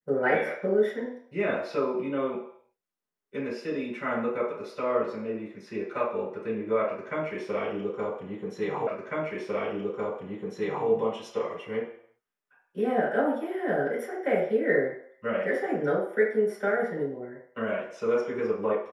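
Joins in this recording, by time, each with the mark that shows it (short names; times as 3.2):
8.87 repeat of the last 2 s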